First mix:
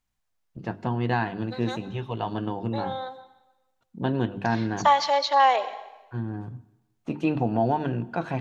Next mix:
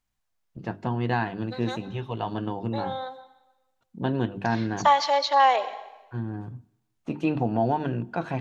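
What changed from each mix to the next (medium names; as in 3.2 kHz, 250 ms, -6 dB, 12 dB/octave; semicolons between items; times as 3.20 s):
first voice: send -7.5 dB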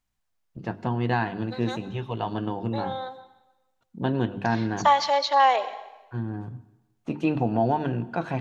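first voice: send +10.5 dB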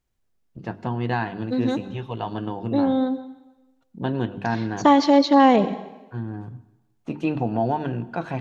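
second voice: remove high-pass 660 Hz 24 dB/octave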